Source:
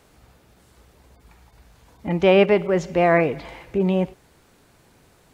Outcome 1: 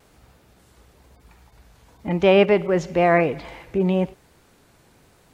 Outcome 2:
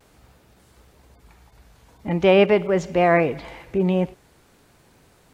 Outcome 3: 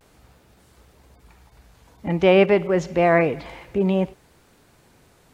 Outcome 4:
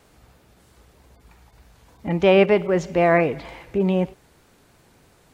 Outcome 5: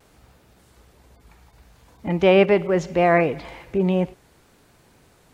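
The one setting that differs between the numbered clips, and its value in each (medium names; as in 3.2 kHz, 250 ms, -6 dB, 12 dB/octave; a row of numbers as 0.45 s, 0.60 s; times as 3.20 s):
vibrato, rate: 1 Hz, 0.45 Hz, 0.31 Hz, 3.2 Hz, 0.68 Hz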